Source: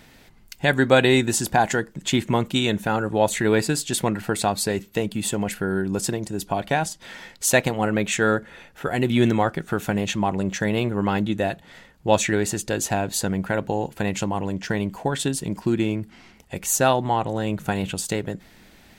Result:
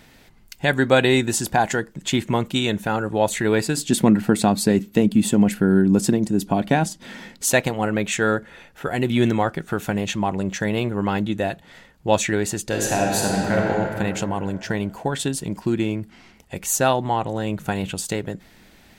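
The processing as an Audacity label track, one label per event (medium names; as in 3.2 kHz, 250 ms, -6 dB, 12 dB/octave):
3.770000	7.520000	peaking EQ 230 Hz +12.5 dB 1.2 oct
12.650000	13.660000	reverb throw, RT60 2.8 s, DRR -2.5 dB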